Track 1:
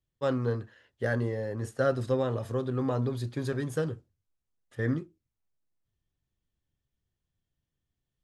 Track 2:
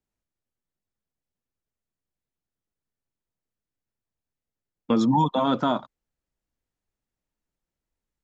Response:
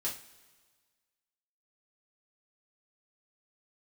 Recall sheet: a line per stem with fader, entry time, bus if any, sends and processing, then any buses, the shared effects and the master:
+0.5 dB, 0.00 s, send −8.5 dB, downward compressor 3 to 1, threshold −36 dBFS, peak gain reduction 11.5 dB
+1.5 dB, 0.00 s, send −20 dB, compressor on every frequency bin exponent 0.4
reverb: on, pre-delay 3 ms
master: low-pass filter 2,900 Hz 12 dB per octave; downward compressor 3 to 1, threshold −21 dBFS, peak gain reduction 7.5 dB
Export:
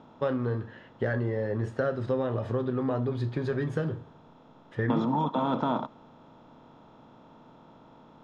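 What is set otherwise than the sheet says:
stem 1 +0.5 dB → +7.0 dB
stem 2 +1.5 dB → −9.0 dB

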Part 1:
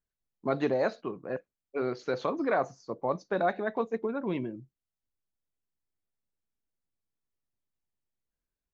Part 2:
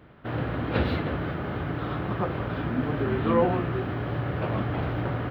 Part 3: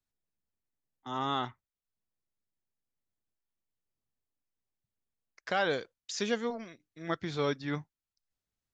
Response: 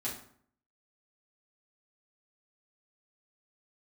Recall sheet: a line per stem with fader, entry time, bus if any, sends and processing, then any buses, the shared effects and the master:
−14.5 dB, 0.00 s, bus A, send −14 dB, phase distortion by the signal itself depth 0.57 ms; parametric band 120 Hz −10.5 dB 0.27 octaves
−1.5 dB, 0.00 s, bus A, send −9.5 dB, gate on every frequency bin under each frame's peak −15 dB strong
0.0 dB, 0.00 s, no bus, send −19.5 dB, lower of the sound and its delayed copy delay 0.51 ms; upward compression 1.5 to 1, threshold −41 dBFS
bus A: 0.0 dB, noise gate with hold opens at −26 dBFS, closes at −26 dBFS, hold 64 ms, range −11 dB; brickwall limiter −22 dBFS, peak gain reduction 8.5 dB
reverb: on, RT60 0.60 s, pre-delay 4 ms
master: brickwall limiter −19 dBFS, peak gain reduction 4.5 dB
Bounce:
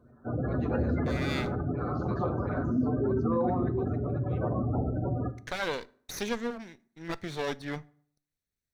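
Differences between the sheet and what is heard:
stem 1: missing phase distortion by the signal itself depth 0.57 ms
stem 3: missing upward compression 1.5 to 1, threshold −41 dBFS

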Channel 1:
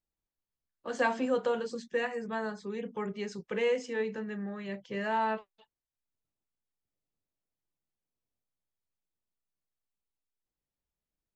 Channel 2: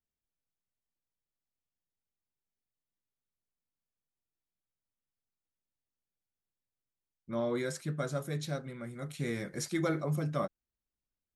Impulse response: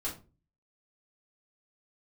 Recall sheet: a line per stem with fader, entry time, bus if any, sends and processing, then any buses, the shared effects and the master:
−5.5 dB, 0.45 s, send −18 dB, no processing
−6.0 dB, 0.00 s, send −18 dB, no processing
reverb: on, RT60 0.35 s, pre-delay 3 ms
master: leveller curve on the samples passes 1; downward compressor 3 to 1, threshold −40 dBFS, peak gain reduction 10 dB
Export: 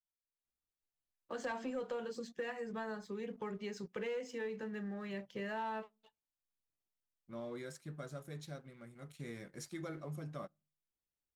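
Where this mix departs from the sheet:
stem 2 −6.0 dB → −14.5 dB
reverb return −9.5 dB

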